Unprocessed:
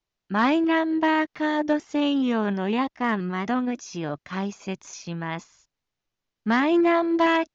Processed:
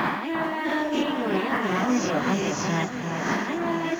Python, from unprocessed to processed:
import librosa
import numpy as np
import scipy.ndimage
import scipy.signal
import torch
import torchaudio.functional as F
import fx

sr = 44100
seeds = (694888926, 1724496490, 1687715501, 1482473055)

p1 = fx.spec_swells(x, sr, rise_s=1.74)
p2 = fx.quant_float(p1, sr, bits=2)
p3 = p1 + F.gain(torch.from_numpy(p2), -11.0).numpy()
p4 = fx.over_compress(p3, sr, threshold_db=-23.0, ratio=-1.0)
p5 = fx.stretch_vocoder_free(p4, sr, factor=0.53)
y = fx.echo_alternate(p5, sr, ms=347, hz=1500.0, feedback_pct=73, wet_db=-5)